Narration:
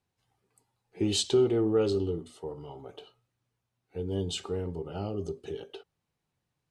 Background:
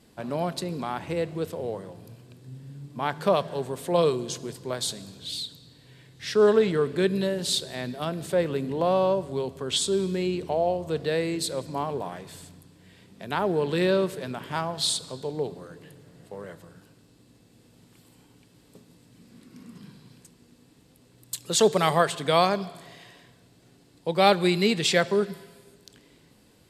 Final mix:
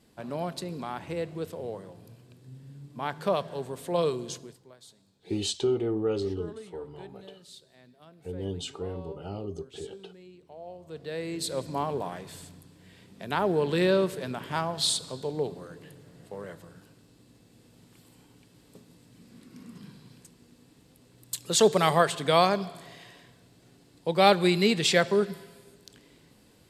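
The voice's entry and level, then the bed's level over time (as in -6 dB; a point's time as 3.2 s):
4.30 s, -2.5 dB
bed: 4.34 s -4.5 dB
4.75 s -23.5 dB
10.41 s -23.5 dB
11.58 s -0.5 dB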